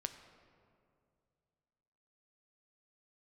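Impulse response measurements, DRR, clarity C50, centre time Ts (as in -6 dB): 7.5 dB, 10.0 dB, 20 ms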